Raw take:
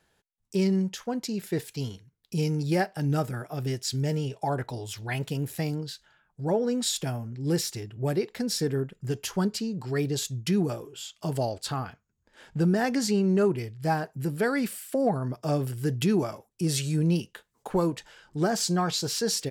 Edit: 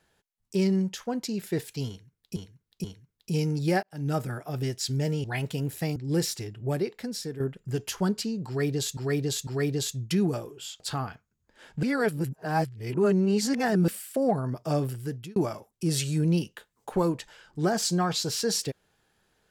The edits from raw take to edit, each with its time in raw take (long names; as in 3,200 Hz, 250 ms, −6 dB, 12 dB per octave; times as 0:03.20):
0:01.88–0:02.36: repeat, 3 plays
0:02.87–0:03.23: fade in
0:04.28–0:05.01: remove
0:05.73–0:07.32: remove
0:07.98–0:08.76: fade out, to −10.5 dB
0:09.83–0:10.33: repeat, 3 plays
0:11.16–0:11.58: remove
0:12.61–0:14.66: reverse
0:15.62–0:16.14: fade out